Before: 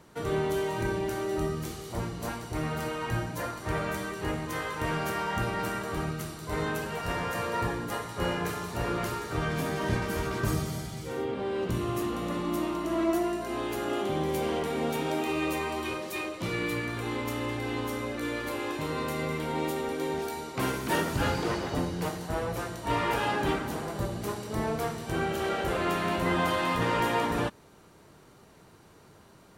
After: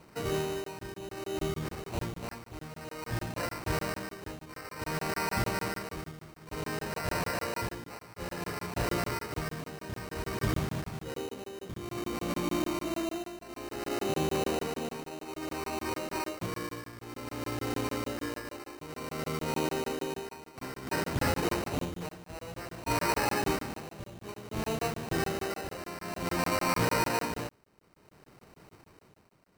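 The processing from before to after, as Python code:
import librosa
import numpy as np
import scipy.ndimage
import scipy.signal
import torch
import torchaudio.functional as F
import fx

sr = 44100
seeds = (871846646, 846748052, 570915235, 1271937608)

y = fx.sample_hold(x, sr, seeds[0], rate_hz=3400.0, jitter_pct=0)
y = y * (1.0 - 0.76 / 2.0 + 0.76 / 2.0 * np.cos(2.0 * np.pi * 0.56 * (np.arange(len(y)) / sr)))
y = fx.buffer_crackle(y, sr, first_s=0.64, period_s=0.15, block=1024, kind='zero')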